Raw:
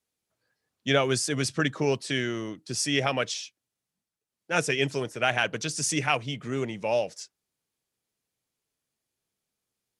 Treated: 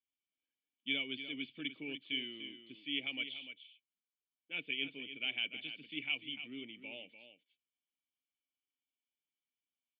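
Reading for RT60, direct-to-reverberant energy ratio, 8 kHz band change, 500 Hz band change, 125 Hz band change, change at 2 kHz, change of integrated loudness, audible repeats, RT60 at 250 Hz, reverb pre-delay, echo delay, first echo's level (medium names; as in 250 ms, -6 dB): no reverb, no reverb, under -40 dB, -25.5 dB, -29.0 dB, -10.5 dB, -12.5 dB, 1, no reverb, no reverb, 296 ms, -10.5 dB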